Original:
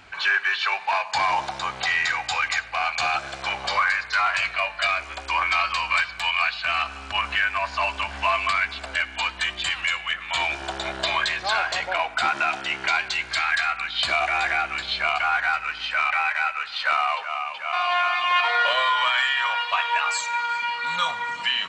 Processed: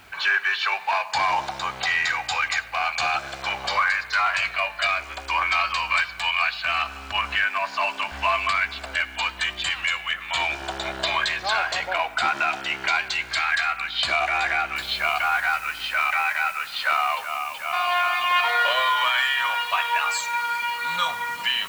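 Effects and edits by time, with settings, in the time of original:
0:07.44–0:08.12: high-pass filter 140 Hz 24 dB per octave
0:14.76: noise floor change −61 dB −46 dB

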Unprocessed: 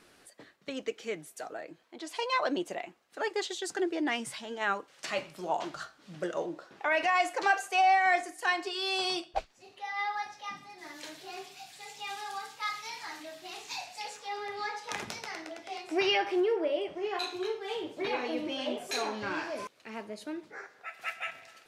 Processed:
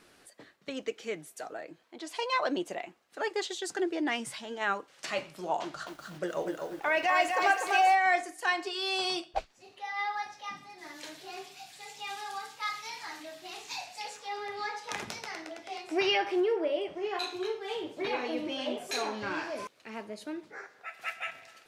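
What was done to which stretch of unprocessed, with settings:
0:05.62–0:07.95: feedback echo at a low word length 246 ms, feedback 35%, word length 9 bits, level −4 dB

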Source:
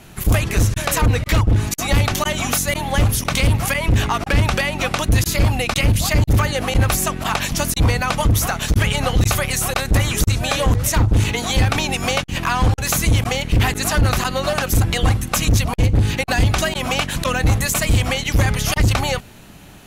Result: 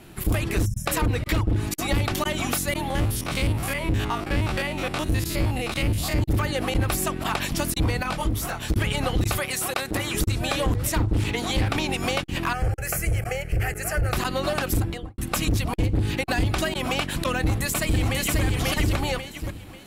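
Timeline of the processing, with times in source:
0:00.66–0:00.86: gain on a spectral selection 220–5,200 Hz −29 dB
0:02.90–0:06.19: spectrum averaged block by block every 50 ms
0:08.03–0:08.70: micro pitch shift up and down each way 11 cents
0:09.38–0:10.14: high-pass filter 300 Hz 6 dB per octave
0:11.04–0:11.99: highs frequency-modulated by the lows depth 0.22 ms
0:12.53–0:14.13: phaser with its sweep stopped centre 1,000 Hz, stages 6
0:14.72–0:15.18: fade out and dull
0:17.40–0:18.42: delay throw 540 ms, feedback 30%, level −0.5 dB
whole clip: parametric band 330 Hz +8 dB 0.49 octaves; downward compressor, threshold −14 dBFS; parametric band 6,300 Hz −7 dB 0.26 octaves; level −5 dB

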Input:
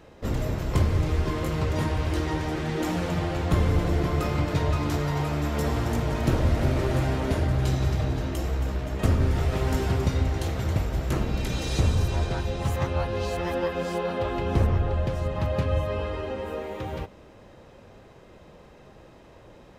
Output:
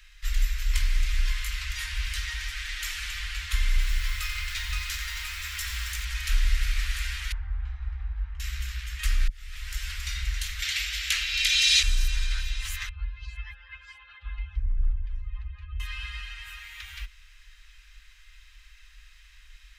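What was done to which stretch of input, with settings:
0:03.72–0:06.05: feedback echo at a low word length 89 ms, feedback 35%, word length 7 bits, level −10 dB
0:07.32–0:08.40: low-pass with resonance 710 Hz, resonance Q 3.6
0:09.28–0:10.12: fade in
0:10.62–0:11.83: meter weighting curve D
0:12.89–0:15.80: expanding power law on the bin magnitudes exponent 1.8
whole clip: inverse Chebyshev band-stop filter 120–640 Hz, stop band 60 dB; low-shelf EQ 210 Hz +5 dB; level +6 dB

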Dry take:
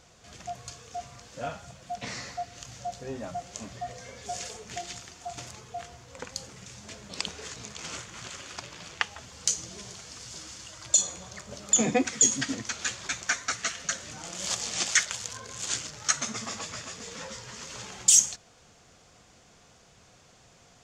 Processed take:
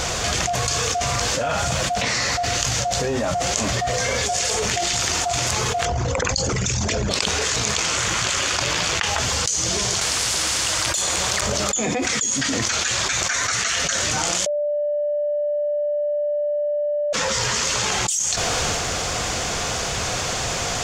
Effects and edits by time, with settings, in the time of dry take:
0:05.85–0:07.11: spectral envelope exaggerated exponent 2
0:10.01–0:11.41: every bin compressed towards the loudest bin 2 to 1
0:14.46–0:17.13: beep over 589 Hz −16 dBFS
whole clip: parametric band 200 Hz −6.5 dB 1.6 octaves; transient designer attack 0 dB, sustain +8 dB; envelope flattener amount 100%; level −6.5 dB

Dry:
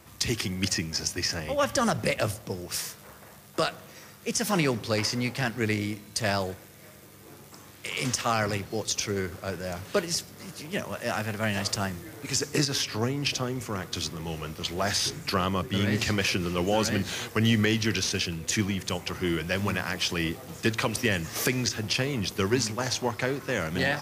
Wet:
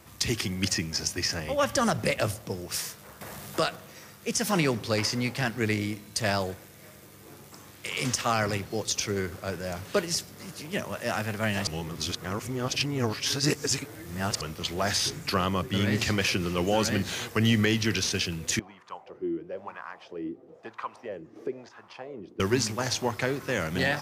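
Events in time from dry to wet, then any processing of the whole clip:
0:03.21–0:03.76: upward compression, threshold −30 dBFS
0:11.67–0:14.41: reverse
0:18.59–0:22.40: LFO wah 1 Hz 310–1,100 Hz, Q 3.8

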